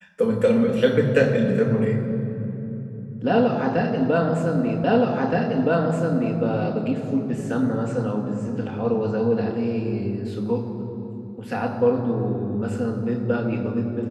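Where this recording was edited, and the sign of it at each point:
0:04.84: the same again, the last 1.57 s

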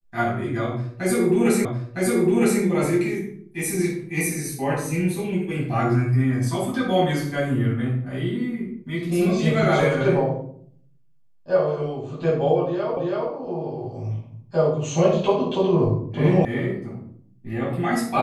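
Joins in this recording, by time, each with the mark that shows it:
0:01.65: the same again, the last 0.96 s
0:12.97: the same again, the last 0.33 s
0:16.45: cut off before it has died away

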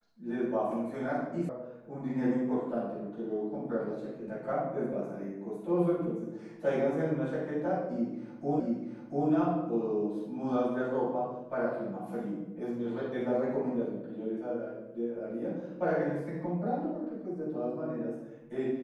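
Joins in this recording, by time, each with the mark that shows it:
0:01.49: cut off before it has died away
0:08.60: the same again, the last 0.69 s

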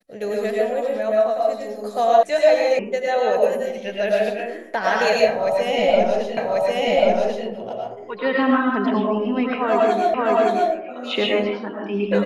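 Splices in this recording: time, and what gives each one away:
0:02.23: cut off before it has died away
0:02.79: cut off before it has died away
0:06.37: the same again, the last 1.09 s
0:10.14: the same again, the last 0.57 s

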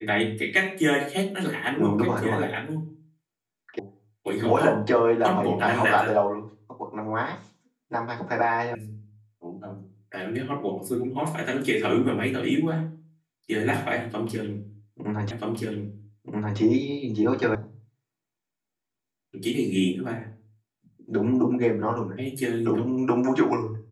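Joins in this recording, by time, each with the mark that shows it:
0:03.79: cut off before it has died away
0:08.75: cut off before it has died away
0:15.31: the same again, the last 1.28 s
0:17.55: cut off before it has died away

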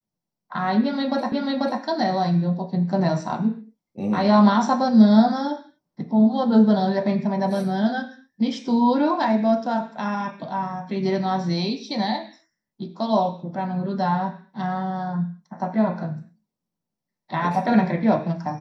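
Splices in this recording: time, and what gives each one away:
0:01.32: the same again, the last 0.49 s

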